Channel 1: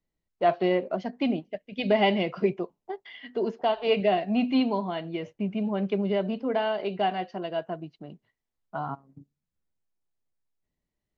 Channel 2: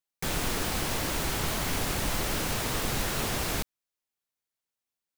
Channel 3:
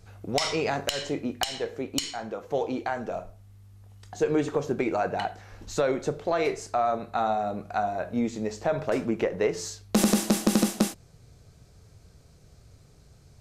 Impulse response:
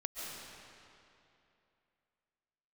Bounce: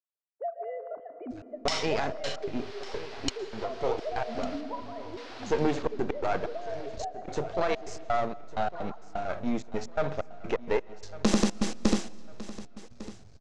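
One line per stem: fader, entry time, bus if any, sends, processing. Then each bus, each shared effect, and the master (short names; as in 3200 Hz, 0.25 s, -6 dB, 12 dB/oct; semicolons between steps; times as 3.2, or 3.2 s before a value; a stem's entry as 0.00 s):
-5.5 dB, 0.00 s, bus A, send -12 dB, no echo send, sine-wave speech; LPF 1400 Hz 24 dB/oct
-13.5 dB, 2.20 s, muted 4.61–5.17, bus A, send -10.5 dB, echo send -7 dB, Chebyshev band-pass 380–4800 Hz, order 3
+1.0 dB, 1.30 s, no bus, send -21 dB, echo send -17 dB, half-wave gain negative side -12 dB; LPF 6800 Hz 24 dB/oct; step gate "x..xxxx.x.xx..x." 128 bpm -60 dB
bus A: 0.0 dB, low shelf 480 Hz -10.5 dB; compressor, threshold -38 dBFS, peak gain reduction 14.5 dB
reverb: on, RT60 2.8 s, pre-delay 0.1 s
echo: feedback echo 1.152 s, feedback 36%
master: dry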